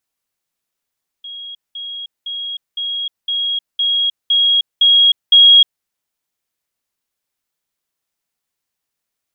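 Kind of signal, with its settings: level ladder 3.29 kHz -28 dBFS, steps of 3 dB, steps 9, 0.31 s 0.20 s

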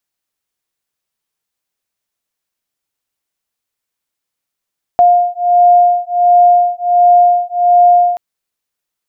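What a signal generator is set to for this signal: beating tones 706 Hz, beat 1.4 Hz, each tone -9.5 dBFS 3.18 s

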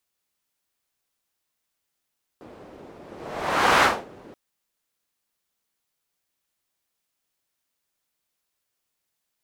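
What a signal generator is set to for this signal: whoosh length 1.93 s, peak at 1.41 s, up 0.87 s, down 0.28 s, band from 410 Hz, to 1.2 kHz, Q 1.1, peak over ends 28 dB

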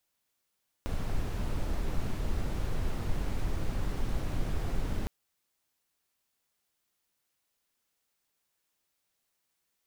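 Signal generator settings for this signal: noise brown, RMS -29.5 dBFS 4.21 s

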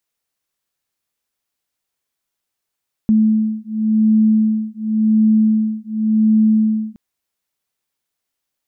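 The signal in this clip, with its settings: beating tones 217 Hz, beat 0.91 Hz, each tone -15 dBFS 3.87 s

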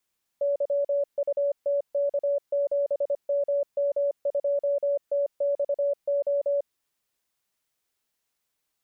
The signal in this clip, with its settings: Morse "YUTK7MM2TXO" 25 wpm 568 Hz -21.5 dBFS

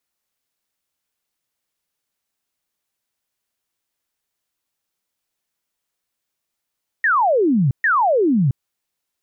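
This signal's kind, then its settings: burst of laser zaps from 1.9 kHz, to 120 Hz, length 0.67 s sine, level -13 dB, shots 2, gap 0.13 s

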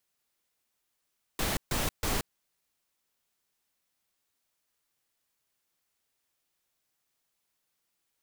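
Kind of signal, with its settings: noise bursts pink, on 0.18 s, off 0.14 s, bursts 3, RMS -29.5 dBFS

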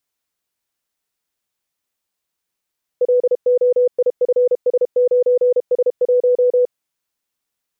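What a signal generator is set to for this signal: Morse "LOIFS9S1" 32 wpm 495 Hz -10.5 dBFS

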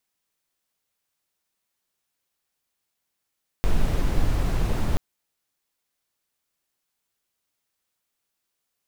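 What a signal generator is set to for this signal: noise brown, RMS -20 dBFS 1.33 s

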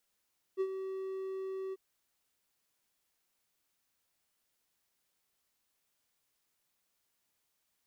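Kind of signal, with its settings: ADSR triangle 382 Hz, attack 37 ms, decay 60 ms, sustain -9 dB, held 1.16 s, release 31 ms -25.5 dBFS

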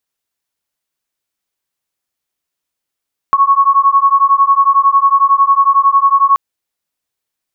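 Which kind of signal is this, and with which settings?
beating tones 1.1 kHz, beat 11 Hz, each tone -10 dBFS 3.03 s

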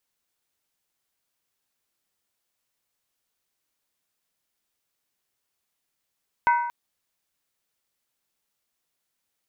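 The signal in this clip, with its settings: skin hit length 0.23 s, lowest mode 953 Hz, decay 0.91 s, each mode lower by 7 dB, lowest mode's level -15 dB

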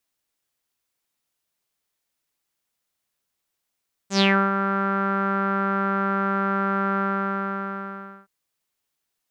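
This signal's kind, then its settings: synth note saw G3 12 dB/octave, low-pass 1.4 kHz, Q 7.4, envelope 2.5 oct, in 0.26 s, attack 97 ms, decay 0.31 s, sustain -8 dB, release 1.29 s, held 2.88 s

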